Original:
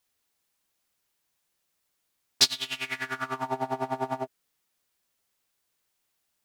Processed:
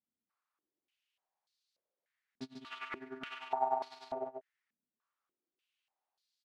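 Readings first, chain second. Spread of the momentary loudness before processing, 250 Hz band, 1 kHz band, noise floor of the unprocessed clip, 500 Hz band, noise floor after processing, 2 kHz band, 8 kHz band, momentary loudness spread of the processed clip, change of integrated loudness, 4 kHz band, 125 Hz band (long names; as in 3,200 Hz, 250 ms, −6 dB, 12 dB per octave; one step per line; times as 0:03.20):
10 LU, −10.5 dB, −4.5 dB, −78 dBFS, −6.0 dB, below −85 dBFS, −13.5 dB, below −30 dB, 16 LU, −11.5 dB, −24.5 dB, −19.5 dB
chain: on a send: single-tap delay 142 ms −6 dB
on the sum: band-pass on a step sequencer 3.4 Hz 220–4,300 Hz
level +2 dB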